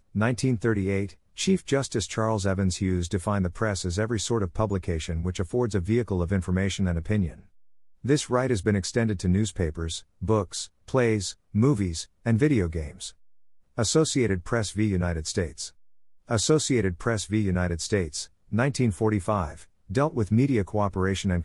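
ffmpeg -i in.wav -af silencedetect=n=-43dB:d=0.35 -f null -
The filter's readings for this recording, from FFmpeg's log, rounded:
silence_start: 7.40
silence_end: 8.04 | silence_duration: 0.64
silence_start: 13.11
silence_end: 13.77 | silence_duration: 0.67
silence_start: 15.69
silence_end: 16.29 | silence_duration: 0.59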